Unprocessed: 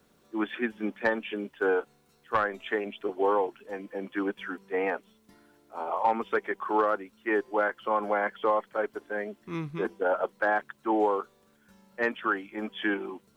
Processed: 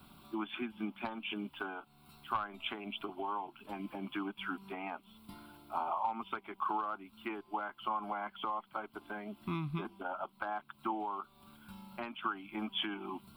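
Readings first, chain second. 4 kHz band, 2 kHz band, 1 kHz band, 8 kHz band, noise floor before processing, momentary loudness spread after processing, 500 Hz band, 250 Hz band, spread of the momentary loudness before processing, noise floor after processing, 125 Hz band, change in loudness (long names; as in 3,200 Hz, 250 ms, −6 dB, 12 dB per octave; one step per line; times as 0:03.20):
+2.0 dB, −12.5 dB, −7.5 dB, can't be measured, −65 dBFS, 9 LU, −17.5 dB, −8.0 dB, 10 LU, −66 dBFS, −1.0 dB, −10.0 dB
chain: downward compressor 10 to 1, threshold −40 dBFS, peak gain reduction 20 dB
phaser with its sweep stopped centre 1,800 Hz, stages 6
level +10 dB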